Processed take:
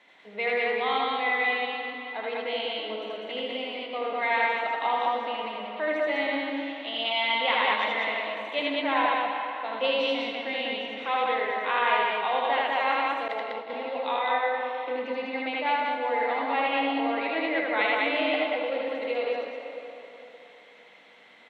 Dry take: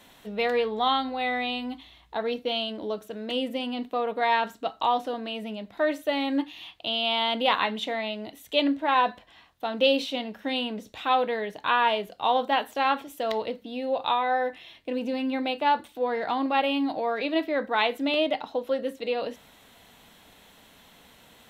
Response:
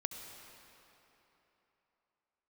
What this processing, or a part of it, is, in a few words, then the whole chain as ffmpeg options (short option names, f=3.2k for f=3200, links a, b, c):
station announcement: -filter_complex "[0:a]highpass=340,lowpass=3.6k,equalizer=f=2.1k:t=o:w=0.3:g=11.5,aecho=1:1:78.72|198.3:0.891|0.891[a];[1:a]atrim=start_sample=2205[b];[a][b]afir=irnorm=-1:irlink=0,asettb=1/sr,asplit=3[c][d][e];[c]atrim=end=13.284[f];[d]atrim=start=13.28:end=13.7,asetpts=PTS-STARTPTS,afade=t=in:d=0.004:c=qsin,afade=t=out:st=0.416:d=0.004:c=qsin,agate=range=-33dB:threshold=-21dB:ratio=3:detection=peak[g];[e]atrim=start=13.696[h];[f][g]acrossfade=d=0.004:c1=hsin:c2=qsin[i];[i][h]acrossfade=d=0.004:c1=qsin:c2=hsin,volume=-4.5dB"